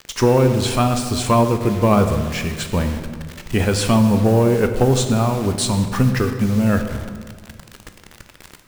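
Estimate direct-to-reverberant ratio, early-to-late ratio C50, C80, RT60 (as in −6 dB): 6.5 dB, 8.0 dB, 9.5 dB, 1.8 s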